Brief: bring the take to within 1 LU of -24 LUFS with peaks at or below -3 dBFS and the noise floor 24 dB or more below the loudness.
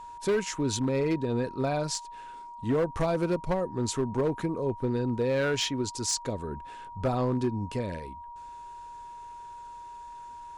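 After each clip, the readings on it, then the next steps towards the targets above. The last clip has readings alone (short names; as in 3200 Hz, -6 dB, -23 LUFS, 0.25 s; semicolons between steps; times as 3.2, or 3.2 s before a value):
clipped 1.3%; flat tops at -21.0 dBFS; steady tone 950 Hz; tone level -41 dBFS; loudness -29.5 LUFS; peak -21.0 dBFS; loudness target -24.0 LUFS
-> clip repair -21 dBFS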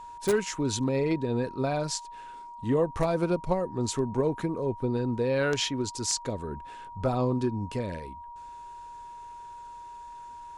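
clipped 0.0%; steady tone 950 Hz; tone level -41 dBFS
-> notch 950 Hz, Q 30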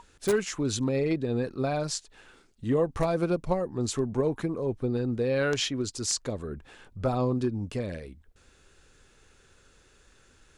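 steady tone none; loudness -29.0 LUFS; peak -12.0 dBFS; loudness target -24.0 LUFS
-> gain +5 dB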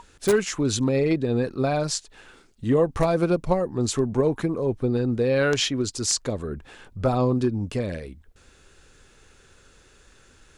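loudness -24.0 LUFS; peak -7.0 dBFS; noise floor -56 dBFS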